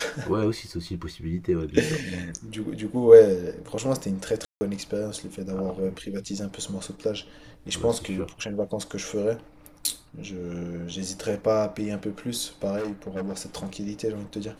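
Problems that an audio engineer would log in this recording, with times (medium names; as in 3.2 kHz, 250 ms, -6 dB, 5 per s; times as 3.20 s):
4.45–4.61 s: dropout 160 ms
12.76–13.76 s: clipped -27 dBFS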